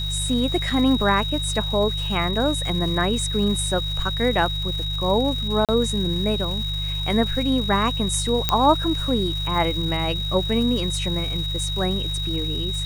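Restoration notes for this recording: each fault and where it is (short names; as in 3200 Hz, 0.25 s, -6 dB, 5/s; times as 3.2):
crackle 570/s -32 dBFS
hum 50 Hz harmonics 3 -28 dBFS
tone 3800 Hz -27 dBFS
0.7 gap 4.1 ms
5.65–5.69 gap 37 ms
8.49 pop -3 dBFS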